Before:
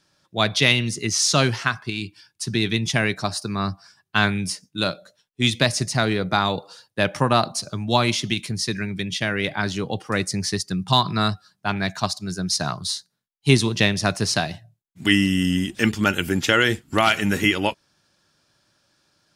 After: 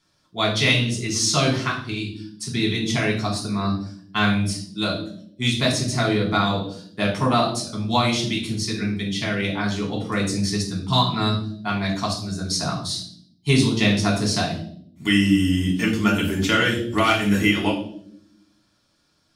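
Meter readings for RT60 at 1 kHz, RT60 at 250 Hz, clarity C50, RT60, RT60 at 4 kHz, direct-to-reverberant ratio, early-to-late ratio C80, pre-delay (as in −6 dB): 0.50 s, 1.2 s, 7.0 dB, 0.65 s, 0.55 s, −2.5 dB, 11.0 dB, 3 ms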